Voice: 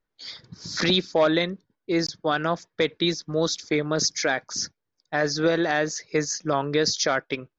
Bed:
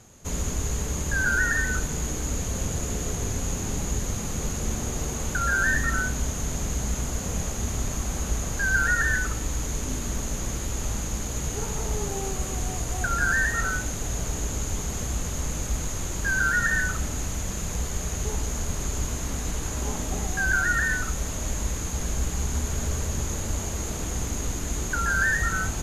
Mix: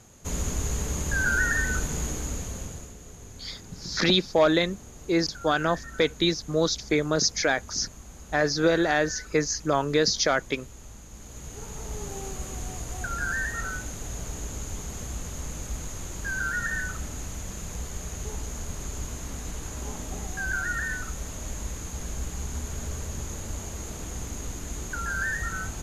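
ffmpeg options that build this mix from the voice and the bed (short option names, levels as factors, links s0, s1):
-filter_complex "[0:a]adelay=3200,volume=1[s0];[1:a]volume=2.99,afade=t=out:st=2.01:d=0.93:silence=0.16788,afade=t=in:st=11.08:d=1.07:silence=0.298538[s1];[s0][s1]amix=inputs=2:normalize=0"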